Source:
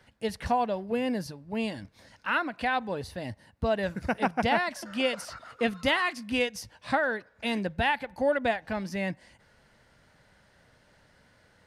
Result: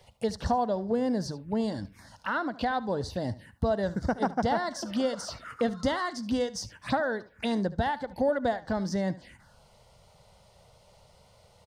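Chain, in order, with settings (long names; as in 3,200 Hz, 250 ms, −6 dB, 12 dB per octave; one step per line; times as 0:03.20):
downward compressor 2 to 1, threshold −33 dBFS, peak gain reduction 7.5 dB
phaser swept by the level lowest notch 240 Hz, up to 2,500 Hz, full sweep at −35 dBFS
single-tap delay 73 ms −17.5 dB
level +6.5 dB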